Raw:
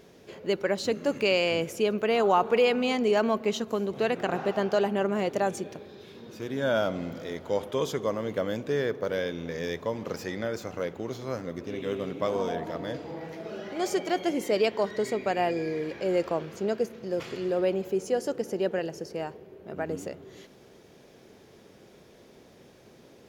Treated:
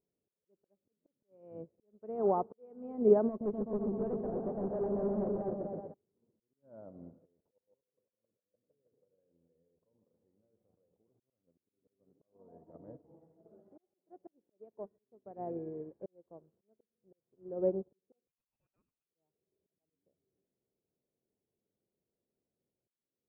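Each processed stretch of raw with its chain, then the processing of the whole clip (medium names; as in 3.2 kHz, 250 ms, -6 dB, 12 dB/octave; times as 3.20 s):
3.28–5.94 s: delay with an opening low-pass 126 ms, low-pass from 400 Hz, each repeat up 1 oct, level 0 dB + hard clipper -24 dBFS
7.25–11.20 s: dynamic bell 500 Hz, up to +7 dB, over -44 dBFS, Q 6.9 + level held to a coarse grid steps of 22 dB + feedback delay 159 ms, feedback 53%, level -10 dB
18.27–19.04 s: hard clipper -22.5 dBFS + frequency inversion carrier 3 kHz
whole clip: Bessel low-pass 560 Hz, order 4; slow attack 559 ms; upward expansion 2.5:1, over -48 dBFS; trim +4.5 dB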